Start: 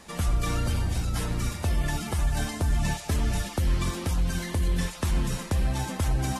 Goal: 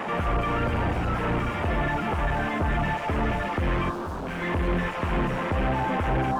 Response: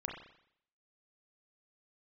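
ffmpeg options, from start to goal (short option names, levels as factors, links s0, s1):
-filter_complex "[0:a]asplit=2[s0][s1];[s1]highpass=f=720:p=1,volume=79.4,asoftclip=type=tanh:threshold=0.158[s2];[s0][s2]amix=inputs=2:normalize=0,lowpass=f=1200:p=1,volume=0.501,asettb=1/sr,asplit=3[s3][s4][s5];[s3]atrim=end=3.914[s6];[s4]atrim=start=3.91:end=4.42,asetpts=PTS-STARTPTS,afade=t=in:d=0.004:c=qsin,afade=t=out:st=0.506:d=0.004:c=qsin,aeval=exprs='0.0531*(abs(mod(val(0)/0.0531+3,4)-2)-1)':c=same[s7];[s5]atrim=start=4.416[s8];[s6][s7]acrossfade=d=0.004:c1=hsin:c2=qsin[s9];[s9][s8]acrossfade=d=0.004:c1=qsin:c2=hsin,afwtdn=0.0316"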